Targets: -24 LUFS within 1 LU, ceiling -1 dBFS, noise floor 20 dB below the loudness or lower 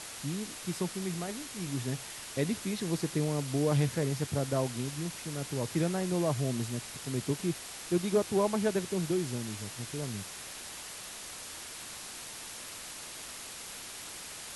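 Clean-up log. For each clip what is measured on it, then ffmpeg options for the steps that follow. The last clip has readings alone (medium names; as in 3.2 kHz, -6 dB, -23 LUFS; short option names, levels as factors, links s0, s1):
noise floor -44 dBFS; noise floor target -54 dBFS; loudness -34.0 LUFS; peak level -15.5 dBFS; loudness target -24.0 LUFS
-> -af "afftdn=nr=10:nf=-44"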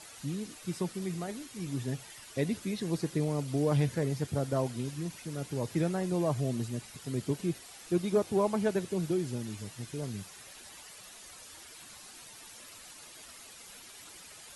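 noise floor -51 dBFS; noise floor target -54 dBFS
-> -af "afftdn=nr=6:nf=-51"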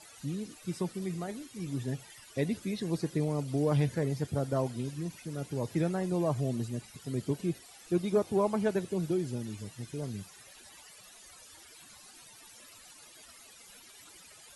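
noise floor -54 dBFS; loudness -33.5 LUFS; peak level -16.0 dBFS; loudness target -24.0 LUFS
-> -af "volume=2.99"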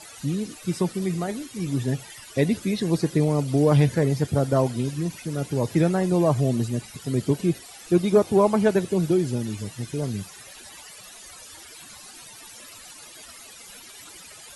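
loudness -24.0 LUFS; peak level -6.5 dBFS; noise floor -45 dBFS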